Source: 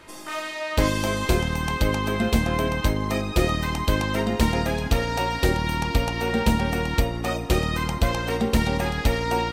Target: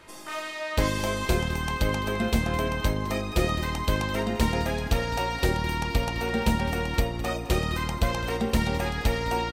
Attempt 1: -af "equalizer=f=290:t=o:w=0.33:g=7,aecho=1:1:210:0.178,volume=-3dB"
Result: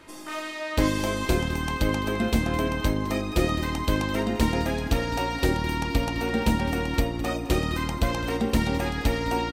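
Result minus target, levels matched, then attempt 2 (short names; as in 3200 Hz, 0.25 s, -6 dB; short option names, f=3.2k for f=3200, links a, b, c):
250 Hz band +2.5 dB
-af "equalizer=f=290:t=o:w=0.33:g=-3.5,aecho=1:1:210:0.178,volume=-3dB"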